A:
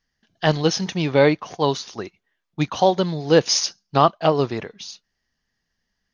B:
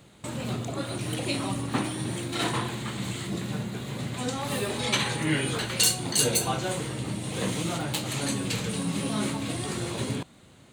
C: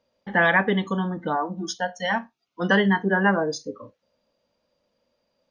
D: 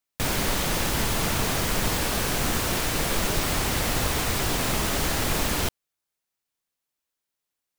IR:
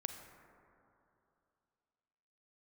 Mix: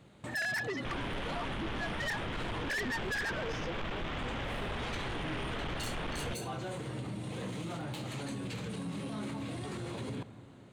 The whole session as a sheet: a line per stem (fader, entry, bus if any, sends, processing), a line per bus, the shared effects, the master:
-15.0 dB, 0.00 s, no send, compressor, threshold -25 dBFS, peak gain reduction 15 dB
-6.5 dB, 0.00 s, send -6 dB, high shelf 4400 Hz -12 dB
-4.5 dB, 0.00 s, no send, sine-wave speech; bell 1800 Hz +11.5 dB 0.24 oct
0.0 dB, 0.65 s, no send, elliptic low-pass 3400 Hz, stop band 40 dB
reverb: on, RT60 2.8 s, pre-delay 33 ms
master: soft clip -24 dBFS, distortion -7 dB; limiter -32 dBFS, peak gain reduction 8 dB

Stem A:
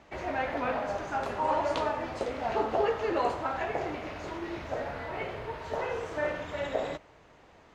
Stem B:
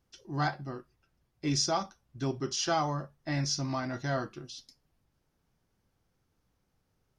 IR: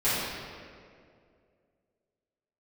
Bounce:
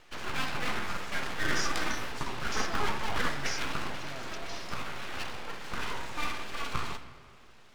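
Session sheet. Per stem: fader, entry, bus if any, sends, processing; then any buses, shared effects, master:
-2.0 dB, 0.00 s, send -23.5 dB, high shelf 4600 Hz -6.5 dB; de-hum 224.1 Hz, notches 35; full-wave rectifier
-16.0 dB, 0.00 s, no send, sustainer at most 27 dB/s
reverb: on, RT60 2.3 s, pre-delay 3 ms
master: high shelf 2400 Hz +10 dB

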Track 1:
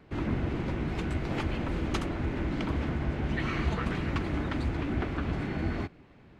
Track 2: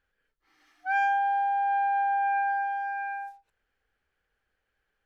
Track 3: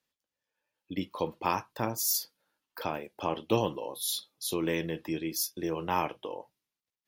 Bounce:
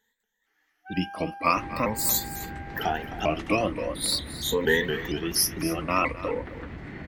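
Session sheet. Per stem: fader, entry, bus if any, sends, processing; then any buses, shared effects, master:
+1.5 dB, 1.45 s, no send, no echo send, compressor 4:1, threshold -39 dBFS, peak gain reduction 14 dB
-12.5 dB, 0.00 s, no send, no echo send, compressor 1.5:1, threshold -33 dBFS, peak gain reduction 4.5 dB
+0.5 dB, 0.00 s, no send, echo send -15 dB, moving spectral ripple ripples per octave 1, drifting -0.45 Hz, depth 21 dB; comb 4.2 ms, depth 51%; shaped vibrato saw up 4.3 Hz, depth 160 cents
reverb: off
echo: echo 0.262 s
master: bell 1900 Hz +9.5 dB 0.28 oct

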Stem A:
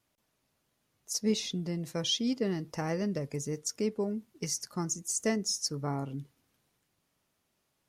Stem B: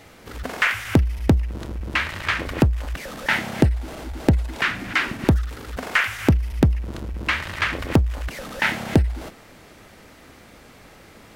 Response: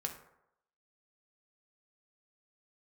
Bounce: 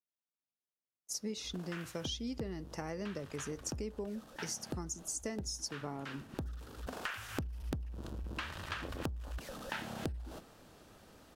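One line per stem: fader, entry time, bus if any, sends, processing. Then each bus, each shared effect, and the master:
-3.0 dB, 0.00 s, no send, HPF 170 Hz; gate -55 dBFS, range -25 dB
-11.5 dB, 1.10 s, send -21 dB, bell 2100 Hz -10.5 dB 0.43 oct; auto duck -11 dB, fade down 1.70 s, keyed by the first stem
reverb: on, RT60 0.80 s, pre-delay 3 ms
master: compressor 6:1, threshold -36 dBFS, peak gain reduction 13 dB

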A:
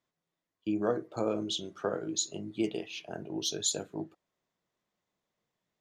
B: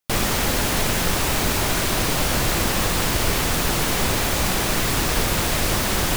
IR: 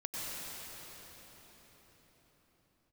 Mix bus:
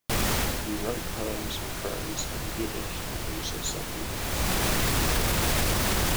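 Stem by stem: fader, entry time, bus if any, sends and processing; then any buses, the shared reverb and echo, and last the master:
-3.0 dB, 0.00 s, no send, dry
-0.5 dB, 0.00 s, no send, bell 66 Hz +3.5 dB 2 oct; auto duck -13 dB, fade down 0.40 s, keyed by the first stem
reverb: off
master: limiter -15.5 dBFS, peak gain reduction 7.5 dB

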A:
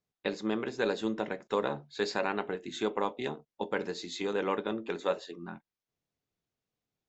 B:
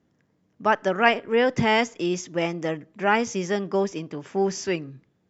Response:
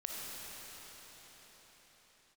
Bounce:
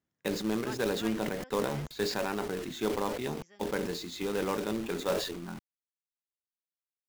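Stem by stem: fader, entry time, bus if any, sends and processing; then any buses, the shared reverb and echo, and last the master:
-3.0 dB, 0.00 s, no send, companded quantiser 4-bit; sustainer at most 56 dB/s
-18.5 dB, 0.00 s, no send, tilt shelf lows -7.5 dB, about 680 Hz; auto duck -16 dB, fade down 1.60 s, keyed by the first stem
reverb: off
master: low shelf 180 Hz +10.5 dB

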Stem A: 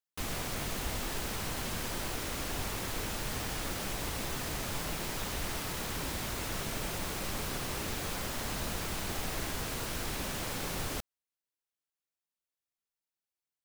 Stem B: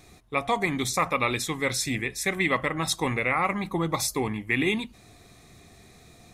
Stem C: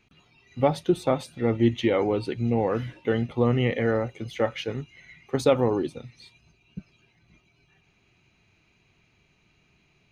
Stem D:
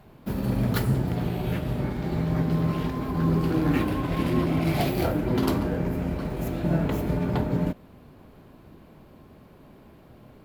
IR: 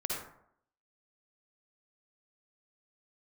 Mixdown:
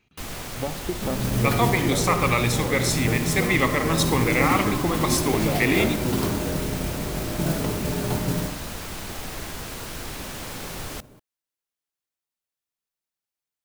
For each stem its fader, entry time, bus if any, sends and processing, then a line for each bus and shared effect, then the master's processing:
+2.0 dB, 0.00 s, no send, dry
0.0 dB, 1.10 s, send -9 dB, dry
-3.5 dB, 0.00 s, send -17 dB, compressor, threshold -23 dBFS, peak gain reduction 8.5 dB
-3.0 dB, 0.75 s, send -10 dB, modulation noise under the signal 13 dB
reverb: on, RT60 0.70 s, pre-delay 48 ms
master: dry

